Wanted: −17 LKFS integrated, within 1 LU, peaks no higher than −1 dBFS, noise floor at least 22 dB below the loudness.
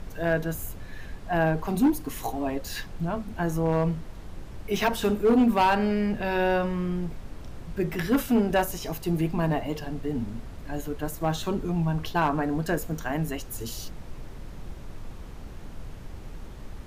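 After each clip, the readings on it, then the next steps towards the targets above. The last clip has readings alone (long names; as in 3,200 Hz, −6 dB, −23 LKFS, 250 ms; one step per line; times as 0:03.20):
share of clipped samples 0.6%; peaks flattened at −15.5 dBFS; background noise floor −41 dBFS; target noise floor −49 dBFS; integrated loudness −27.0 LKFS; sample peak −15.5 dBFS; target loudness −17.0 LKFS
→ clipped peaks rebuilt −15.5 dBFS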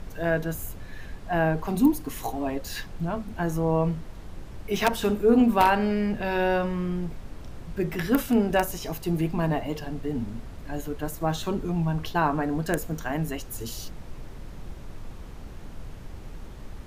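share of clipped samples 0.0%; background noise floor −41 dBFS; target noise floor −49 dBFS
→ noise reduction from a noise print 8 dB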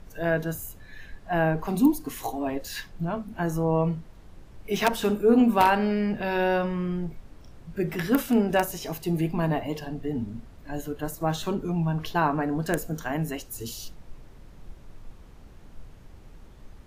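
background noise floor −48 dBFS; target noise floor −49 dBFS
→ noise reduction from a noise print 6 dB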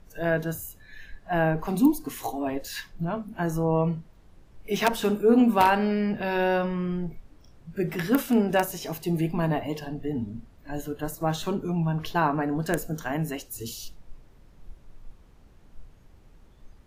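background noise floor −54 dBFS; integrated loudness −26.5 LKFS; sample peak −6.5 dBFS; target loudness −17.0 LKFS
→ level +9.5 dB
brickwall limiter −1 dBFS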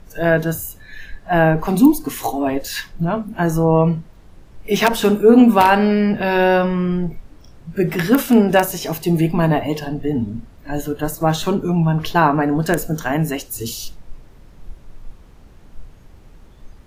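integrated loudness −17.5 LKFS; sample peak −1.0 dBFS; background noise floor −45 dBFS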